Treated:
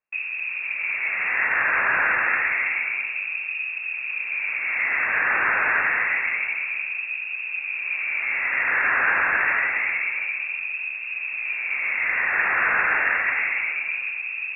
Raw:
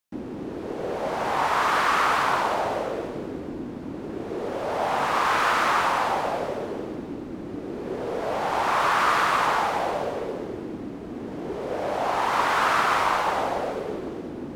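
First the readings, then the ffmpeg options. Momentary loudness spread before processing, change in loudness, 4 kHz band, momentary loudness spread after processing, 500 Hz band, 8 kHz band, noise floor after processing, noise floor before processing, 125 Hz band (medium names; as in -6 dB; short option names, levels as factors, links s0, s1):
14 LU, +3.0 dB, under -10 dB, 7 LU, -12.5 dB, under -40 dB, -32 dBFS, -36 dBFS, under -10 dB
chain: -af "lowshelf=f=320:g=8,lowpass=f=2400:t=q:w=0.5098,lowpass=f=2400:t=q:w=0.6013,lowpass=f=2400:t=q:w=0.9,lowpass=f=2400:t=q:w=2.563,afreqshift=-2800"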